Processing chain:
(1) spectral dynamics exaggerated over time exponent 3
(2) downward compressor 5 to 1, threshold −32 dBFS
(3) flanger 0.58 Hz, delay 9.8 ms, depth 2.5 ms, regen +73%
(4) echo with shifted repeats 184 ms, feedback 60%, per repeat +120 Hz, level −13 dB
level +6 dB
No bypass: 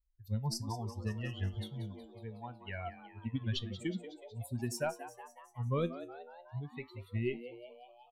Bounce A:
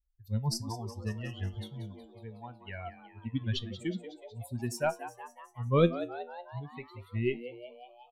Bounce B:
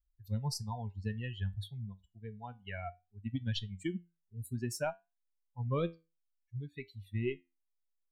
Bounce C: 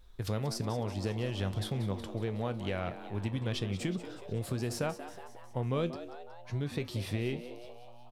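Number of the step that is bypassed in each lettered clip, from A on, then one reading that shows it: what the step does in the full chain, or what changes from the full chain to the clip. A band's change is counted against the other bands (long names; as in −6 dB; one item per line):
2, 500 Hz band +3.5 dB
4, echo-to-direct ratio −11.0 dB to none audible
1, 500 Hz band +1.5 dB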